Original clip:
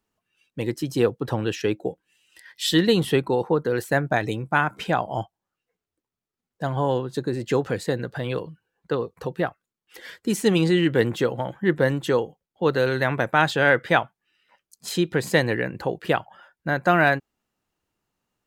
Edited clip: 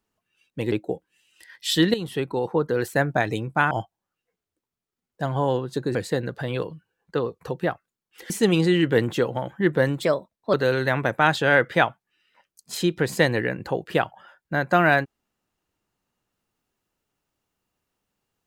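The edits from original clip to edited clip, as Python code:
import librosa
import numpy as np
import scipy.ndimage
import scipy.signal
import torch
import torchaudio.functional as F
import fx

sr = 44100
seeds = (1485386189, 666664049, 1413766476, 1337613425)

y = fx.edit(x, sr, fx.cut(start_s=0.72, length_s=0.96),
    fx.fade_in_from(start_s=2.9, length_s=0.74, floor_db=-12.5),
    fx.cut(start_s=4.67, length_s=0.45),
    fx.cut(start_s=7.36, length_s=0.35),
    fx.cut(start_s=10.06, length_s=0.27),
    fx.speed_span(start_s=12.05, length_s=0.63, speed=1.22), tone=tone)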